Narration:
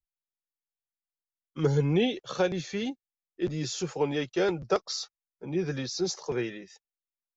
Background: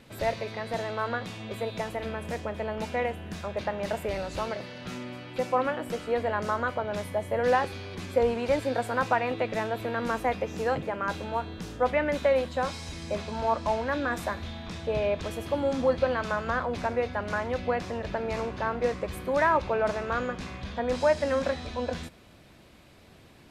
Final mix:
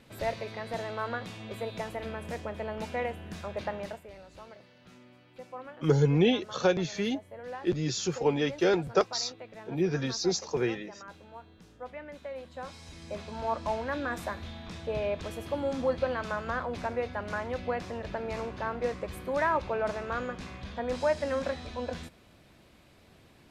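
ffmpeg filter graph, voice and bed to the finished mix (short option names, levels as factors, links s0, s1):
-filter_complex "[0:a]adelay=4250,volume=1.19[s0];[1:a]volume=2.99,afade=t=out:st=3.75:d=0.26:silence=0.211349,afade=t=in:st=12.32:d=1.33:silence=0.223872[s1];[s0][s1]amix=inputs=2:normalize=0"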